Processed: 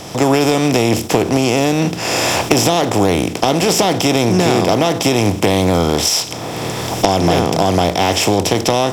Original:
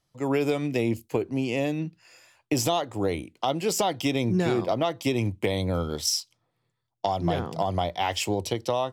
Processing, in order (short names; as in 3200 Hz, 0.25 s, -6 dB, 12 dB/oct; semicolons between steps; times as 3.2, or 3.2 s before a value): per-bin compression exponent 0.4; recorder AGC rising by 19 dB/s; soft clip -7.5 dBFS, distortion -18 dB; gain +6.5 dB